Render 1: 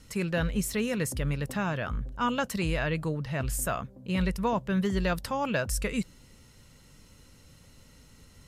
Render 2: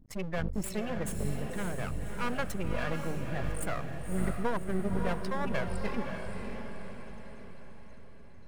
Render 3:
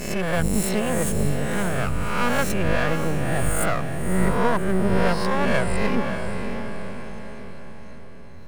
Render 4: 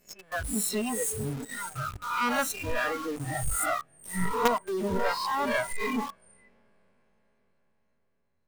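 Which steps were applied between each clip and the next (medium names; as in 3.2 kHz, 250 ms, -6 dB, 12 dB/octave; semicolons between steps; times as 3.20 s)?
spectral gate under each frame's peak -15 dB strong; half-wave rectifier; echo that smears into a reverb 577 ms, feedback 50%, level -5 dB
reverse spectral sustain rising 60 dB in 1.07 s; trim +8.5 dB
spectral noise reduction 29 dB; bass shelf 290 Hz -5.5 dB; in parallel at -7.5 dB: companded quantiser 2-bit; on the sum: trim -4 dB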